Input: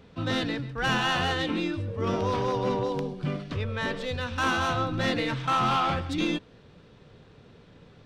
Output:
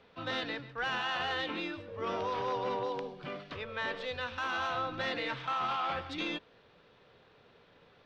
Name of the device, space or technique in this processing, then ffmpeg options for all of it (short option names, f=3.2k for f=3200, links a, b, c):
DJ mixer with the lows and highs turned down: -filter_complex "[0:a]acrossover=split=440 5200:gain=0.224 1 0.0891[a][b][c];[a][b][c]amix=inputs=3:normalize=0,bandreject=f=50:t=h:w=6,bandreject=f=100:t=h:w=6,bandreject=f=150:t=h:w=6,alimiter=limit=-23dB:level=0:latency=1:release=32,volume=-2.5dB"